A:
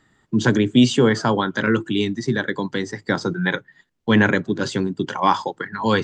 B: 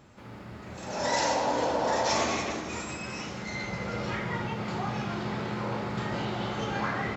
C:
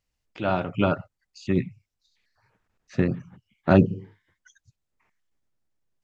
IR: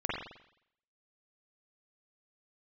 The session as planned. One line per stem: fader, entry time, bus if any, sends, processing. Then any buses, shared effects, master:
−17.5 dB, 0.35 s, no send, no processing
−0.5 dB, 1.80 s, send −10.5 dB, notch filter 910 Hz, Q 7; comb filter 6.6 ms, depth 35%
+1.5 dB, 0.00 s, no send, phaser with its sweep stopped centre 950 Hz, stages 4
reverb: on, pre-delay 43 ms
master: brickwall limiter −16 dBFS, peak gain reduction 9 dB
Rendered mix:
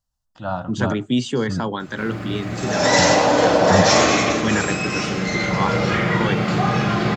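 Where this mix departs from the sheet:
stem A −17.5 dB → −6.0 dB
stem B −0.5 dB → +10.0 dB
master: missing brickwall limiter −16 dBFS, peak gain reduction 9 dB

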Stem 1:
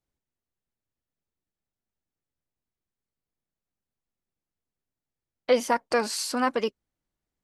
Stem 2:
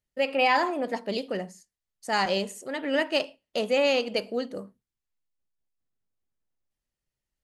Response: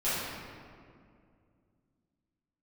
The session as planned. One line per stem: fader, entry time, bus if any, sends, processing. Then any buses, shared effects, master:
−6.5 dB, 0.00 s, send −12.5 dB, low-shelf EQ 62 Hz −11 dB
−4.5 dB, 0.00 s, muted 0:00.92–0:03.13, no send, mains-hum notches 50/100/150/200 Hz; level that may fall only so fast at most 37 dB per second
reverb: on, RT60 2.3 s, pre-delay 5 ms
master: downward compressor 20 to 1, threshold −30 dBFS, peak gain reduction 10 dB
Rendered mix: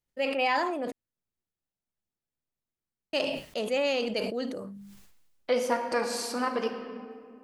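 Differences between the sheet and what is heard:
stem 1: missing low-shelf EQ 62 Hz −11 dB
master: missing downward compressor 20 to 1, threshold −30 dBFS, peak gain reduction 10 dB

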